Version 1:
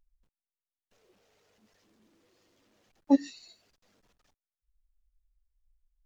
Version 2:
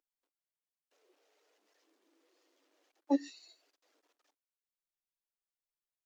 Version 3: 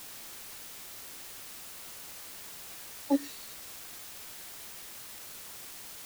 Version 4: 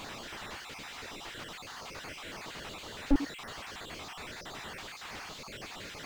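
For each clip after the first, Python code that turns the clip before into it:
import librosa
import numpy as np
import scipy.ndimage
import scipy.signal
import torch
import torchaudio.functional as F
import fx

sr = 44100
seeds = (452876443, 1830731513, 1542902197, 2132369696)

y1 = scipy.signal.sosfilt(scipy.signal.ellip(4, 1.0, 40, 290.0, 'highpass', fs=sr, output='sos'), x)
y1 = y1 * librosa.db_to_amplitude(-4.0)
y2 = fx.quant_dither(y1, sr, seeds[0], bits=8, dither='triangular')
y2 = y2 * librosa.db_to_amplitude(2.5)
y3 = fx.spec_dropout(y2, sr, seeds[1], share_pct=37)
y3 = np.repeat(scipy.signal.resample_poly(y3, 1, 4), 4)[:len(y3)]
y3 = fx.slew_limit(y3, sr, full_power_hz=6.2)
y3 = y3 * librosa.db_to_amplitude(12.0)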